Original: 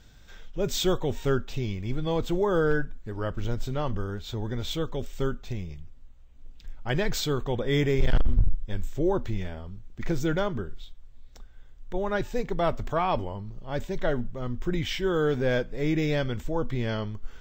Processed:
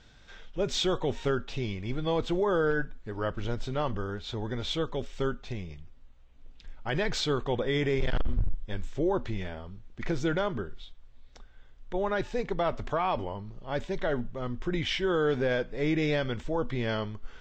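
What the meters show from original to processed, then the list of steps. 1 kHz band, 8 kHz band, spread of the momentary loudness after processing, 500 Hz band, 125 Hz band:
-1.0 dB, -4.5 dB, 11 LU, -1.5 dB, -4.5 dB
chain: LPF 5100 Hz 12 dB/oct; low shelf 250 Hz -7 dB; limiter -21 dBFS, peak gain reduction 5.5 dB; gain +2 dB

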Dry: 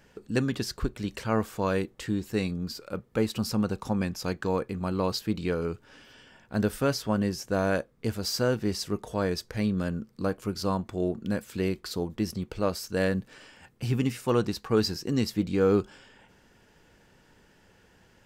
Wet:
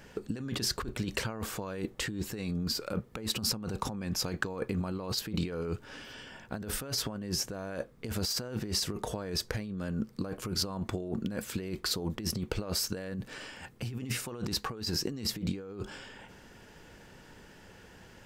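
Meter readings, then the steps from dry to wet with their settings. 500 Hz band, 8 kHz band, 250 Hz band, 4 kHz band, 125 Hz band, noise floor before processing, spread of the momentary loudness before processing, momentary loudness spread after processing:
-10.5 dB, +4.0 dB, -7.5 dB, +2.5 dB, -5.5 dB, -61 dBFS, 7 LU, 17 LU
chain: negative-ratio compressor -35 dBFS, ratio -1

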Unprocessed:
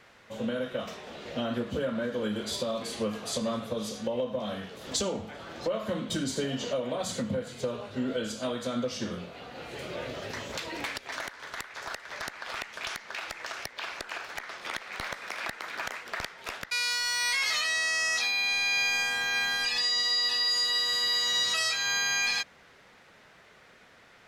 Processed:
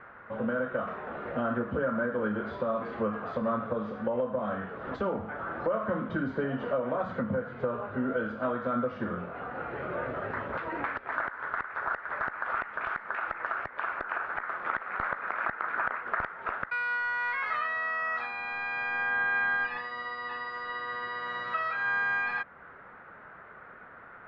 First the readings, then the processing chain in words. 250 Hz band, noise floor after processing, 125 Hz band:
+0.5 dB, -50 dBFS, +0.5 dB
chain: in parallel at 0 dB: compressor, threshold -40 dBFS, peak gain reduction 15 dB; on the sum: ladder low-pass 1600 Hz, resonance 55%; gain +8 dB

